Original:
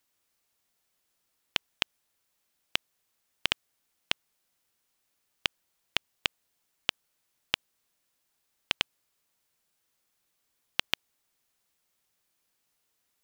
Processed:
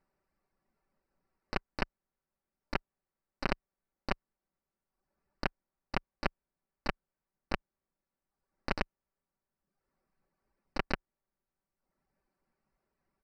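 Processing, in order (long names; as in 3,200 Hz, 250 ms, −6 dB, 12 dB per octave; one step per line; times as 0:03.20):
reverb reduction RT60 1.1 s
spectral tilt −2 dB per octave
comb filter 5.2 ms, depth 69%
pitch-shifted copies added −12 semitones −17 dB, +5 semitones −13 dB, +7 semitones −5 dB
moving average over 13 samples
level +2.5 dB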